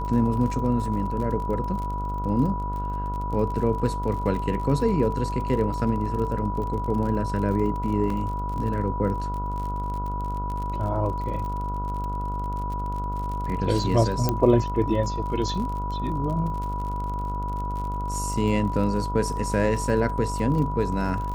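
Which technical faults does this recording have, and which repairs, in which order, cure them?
buzz 50 Hz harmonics 29 -30 dBFS
crackle 45/s -32 dBFS
tone 980 Hz -30 dBFS
8.1 gap 3.4 ms
14.29 pop -9 dBFS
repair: de-click; de-hum 50 Hz, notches 29; notch 980 Hz, Q 30; interpolate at 8.1, 3.4 ms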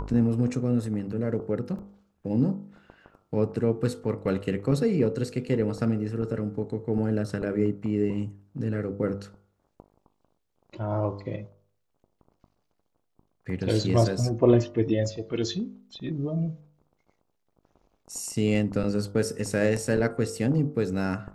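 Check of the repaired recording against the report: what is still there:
none

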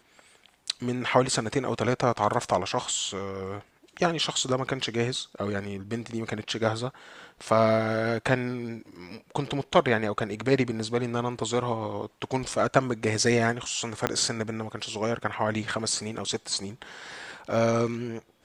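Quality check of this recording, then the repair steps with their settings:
14.07 pop -9 dBFS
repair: de-click

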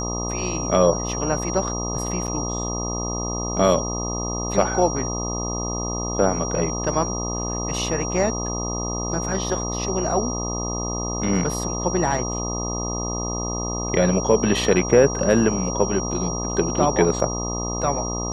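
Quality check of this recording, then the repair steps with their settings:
buzz 60 Hz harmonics 21 -28 dBFS
tone 5700 Hz -29 dBFS
2.27–2.28 gap 8.3 ms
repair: notch 5700 Hz, Q 30; de-hum 60 Hz, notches 21; interpolate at 2.27, 8.3 ms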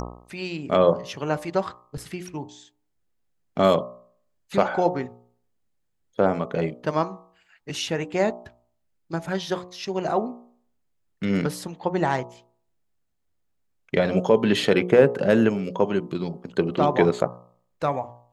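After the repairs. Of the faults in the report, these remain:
none

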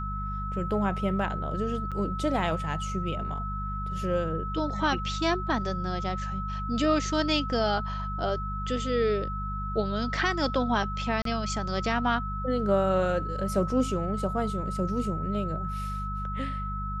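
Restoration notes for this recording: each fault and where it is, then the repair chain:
hum 50 Hz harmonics 4 -34 dBFS
tone 1300 Hz -34 dBFS
1.91–1.92 gap 6.7 ms
11.22–11.25 gap 33 ms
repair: de-hum 50 Hz, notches 4; notch 1300 Hz, Q 30; interpolate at 1.91, 6.7 ms; interpolate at 11.22, 33 ms

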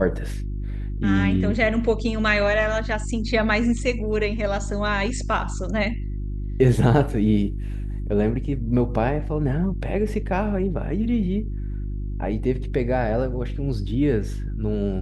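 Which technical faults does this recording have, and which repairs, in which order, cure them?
hum 50 Hz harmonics 7 -28 dBFS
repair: de-hum 50 Hz, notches 7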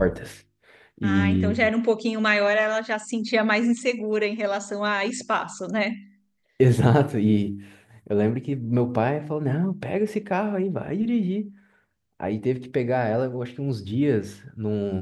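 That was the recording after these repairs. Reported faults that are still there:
none

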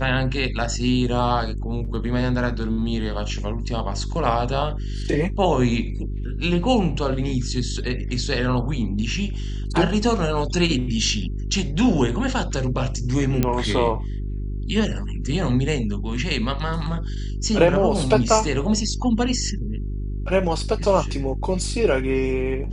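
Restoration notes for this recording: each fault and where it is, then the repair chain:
hum 50 Hz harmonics 8 -27 dBFS
13.43 pop -6 dBFS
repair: de-click; de-hum 50 Hz, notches 8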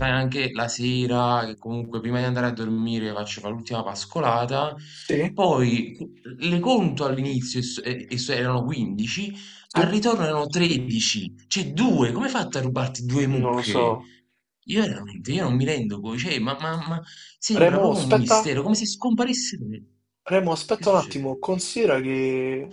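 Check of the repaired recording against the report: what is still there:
none

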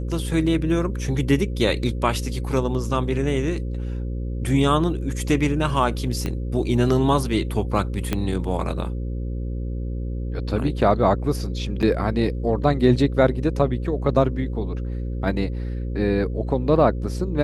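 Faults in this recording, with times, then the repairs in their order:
buzz 60 Hz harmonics 9 -27 dBFS
6.26 pop -13 dBFS
8.13 pop -9 dBFS
11.82–11.83 gap 7 ms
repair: de-click; de-hum 60 Hz, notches 9; interpolate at 11.82, 7 ms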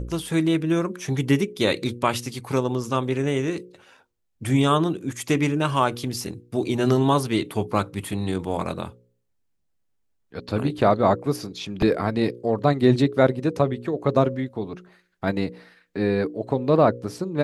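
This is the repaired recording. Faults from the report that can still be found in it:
6.26 pop
8.13 pop

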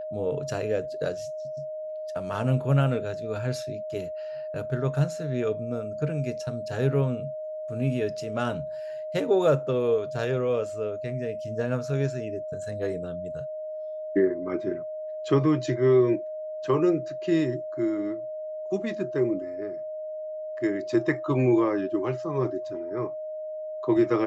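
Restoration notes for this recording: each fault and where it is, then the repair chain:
tone 620 Hz -32 dBFS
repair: notch 620 Hz, Q 30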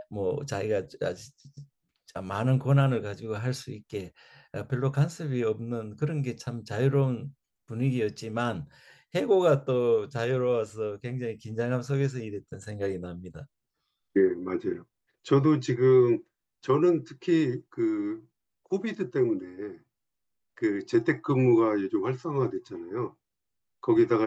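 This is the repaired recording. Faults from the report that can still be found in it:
none

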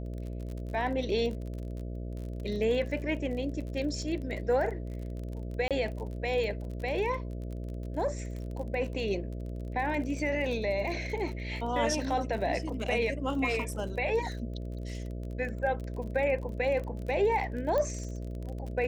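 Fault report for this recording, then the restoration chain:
buzz 60 Hz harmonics 11 -37 dBFS
crackle 32/s -37 dBFS
5.68–5.71 gap 27 ms
17.78 pop -19 dBFS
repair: de-click; de-hum 60 Hz, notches 11; interpolate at 5.68, 27 ms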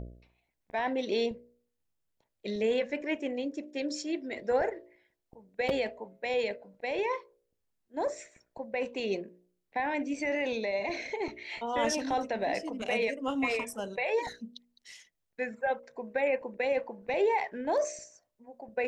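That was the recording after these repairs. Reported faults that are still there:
17.78 pop

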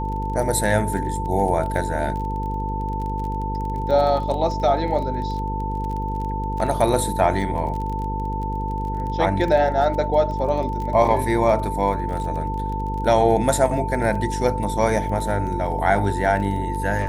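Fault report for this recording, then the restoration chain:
buzz 50 Hz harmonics 10 -27 dBFS
crackle 25/s -29 dBFS
tone 890 Hz -27 dBFS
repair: de-click; de-hum 50 Hz, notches 10; notch 890 Hz, Q 30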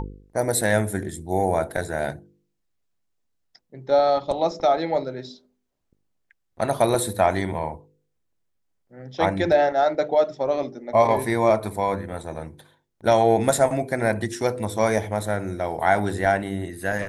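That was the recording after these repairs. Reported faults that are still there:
none

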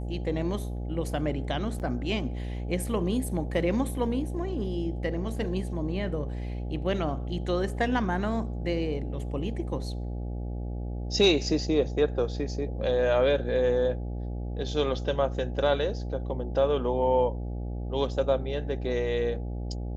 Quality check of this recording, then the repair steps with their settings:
buzz 60 Hz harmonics 14 -33 dBFS
1.79–1.8 gap 8.5 ms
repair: de-hum 60 Hz, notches 14; interpolate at 1.79, 8.5 ms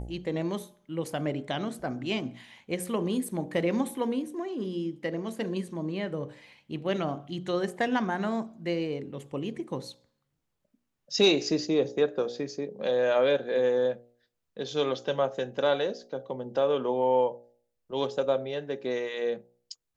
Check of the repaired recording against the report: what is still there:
none

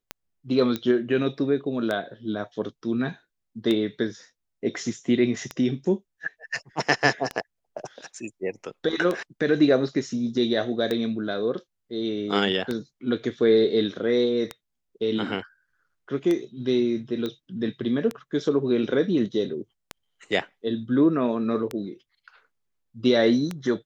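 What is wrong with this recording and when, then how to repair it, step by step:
tick 33 1/3 rpm -14 dBFS
0.76 pop -14 dBFS
17.26 pop -18 dBFS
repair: de-click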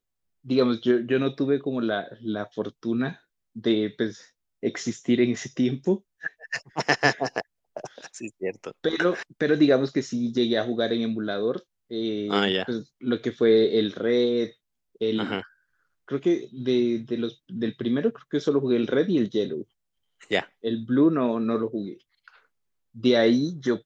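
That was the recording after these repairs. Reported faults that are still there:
none

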